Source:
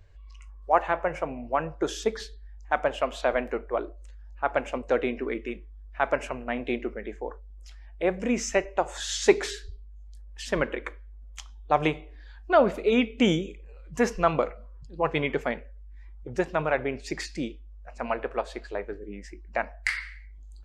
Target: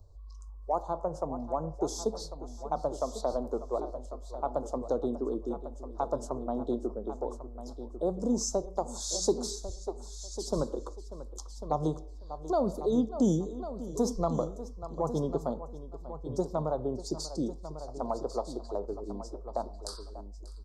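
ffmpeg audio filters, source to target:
ffmpeg -i in.wav -filter_complex "[0:a]asuperstop=centerf=2200:order=8:qfactor=0.69,asplit=2[link_01][link_02];[link_02]aecho=0:1:590:0.119[link_03];[link_01][link_03]amix=inputs=2:normalize=0,acrossover=split=230|3000[link_04][link_05][link_06];[link_05]acompressor=threshold=-30dB:ratio=2.5[link_07];[link_04][link_07][link_06]amix=inputs=3:normalize=0,asplit=2[link_08][link_09];[link_09]aecho=0:1:1097:0.251[link_10];[link_08][link_10]amix=inputs=2:normalize=0" out.wav

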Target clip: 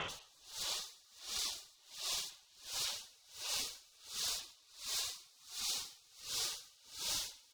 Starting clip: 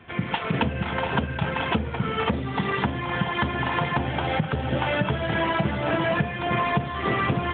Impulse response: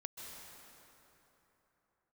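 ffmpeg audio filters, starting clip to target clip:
-filter_complex "[0:a]aeval=exprs='val(0)+0.00251*(sin(2*PI*50*n/s)+sin(2*PI*2*50*n/s)/2+sin(2*PI*3*50*n/s)/3+sin(2*PI*4*50*n/s)/4+sin(2*PI*5*50*n/s)/5)':channel_layout=same,equalizer=frequency=125:width_type=o:width=1:gain=-7,equalizer=frequency=250:width_type=o:width=1:gain=3,equalizer=frequency=500:width_type=o:width=1:gain=-5,equalizer=frequency=1000:width_type=o:width=1:gain=-10,equalizer=frequency=2000:width_type=o:width=1:gain=5,alimiter=limit=-18.5dB:level=0:latency=1:release=371,highpass=frequency=68:width=0.5412,highpass=frequency=68:width=1.3066,aemphasis=mode=reproduction:type=cd,asplit=3[link_01][link_02][link_03];[link_01]afade=type=out:start_time=4.7:duration=0.02[link_04];[link_02]asplit=8[link_05][link_06][link_07][link_08][link_09][link_10][link_11][link_12];[link_06]adelay=220,afreqshift=45,volume=-11dB[link_13];[link_07]adelay=440,afreqshift=90,volume=-15.2dB[link_14];[link_08]adelay=660,afreqshift=135,volume=-19.3dB[link_15];[link_09]adelay=880,afreqshift=180,volume=-23.5dB[link_16];[link_10]adelay=1100,afreqshift=225,volume=-27.6dB[link_17];[link_11]adelay=1320,afreqshift=270,volume=-31.8dB[link_18];[link_12]adelay=1540,afreqshift=315,volume=-35.9dB[link_19];[link_05][link_13][link_14][link_15][link_16][link_17][link_18][link_19]amix=inputs=8:normalize=0,afade=type=in:start_time=4.7:duration=0.02,afade=type=out:start_time=7.01:duration=0.02[link_20];[link_03]afade=type=in:start_time=7.01:duration=0.02[link_21];[link_04][link_20][link_21]amix=inputs=3:normalize=0,asplit=2[link_22][link_23];[link_23]highpass=frequency=720:poles=1,volume=34dB,asoftclip=type=tanh:threshold=-16dB[link_24];[link_22][link_24]amix=inputs=2:normalize=0,lowpass=frequency=2900:poles=1,volume=-6dB[link_25];[1:a]atrim=start_sample=2205,asetrate=42336,aresample=44100[link_26];[link_25][link_26]afir=irnorm=-1:irlink=0,afftfilt=real='re*lt(hypot(re,im),0.0282)':imag='im*lt(hypot(re,im),0.0282)':win_size=1024:overlap=0.75,aeval=exprs='val(0)*pow(10,-29*(0.5-0.5*cos(2*PI*1.4*n/s))/20)':channel_layout=same,volume=5dB"

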